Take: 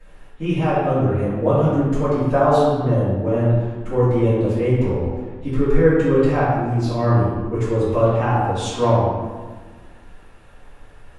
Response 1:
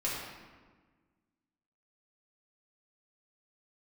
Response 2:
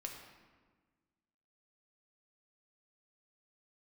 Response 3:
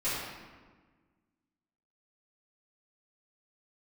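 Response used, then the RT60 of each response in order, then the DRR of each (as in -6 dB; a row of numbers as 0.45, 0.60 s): 3; 1.4, 1.4, 1.4 s; -7.0, 1.0, -14.5 dB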